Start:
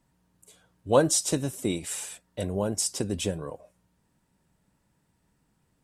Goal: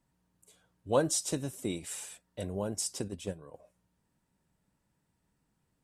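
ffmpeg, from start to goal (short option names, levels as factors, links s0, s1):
-filter_complex "[0:a]asettb=1/sr,asplit=3[s0][s1][s2];[s0]atrim=end=3.084[s3];[s1]atrim=start=3.08:end=3.54,asetpts=PTS-STARTPTS,afade=t=in:d=0.004:c=qsin,afade=t=out:st=0.456:d=0.004:c=qsin,agate=range=0.398:threshold=0.0447:ratio=16:detection=peak[s4];[s2]atrim=start=3.536[s5];[s3][s4]acrossfade=d=0.004:c1=hsin:c2=qsin[s6];[s6][s5]acrossfade=d=0.004:c1=qsin:c2=hsin,volume=0.473"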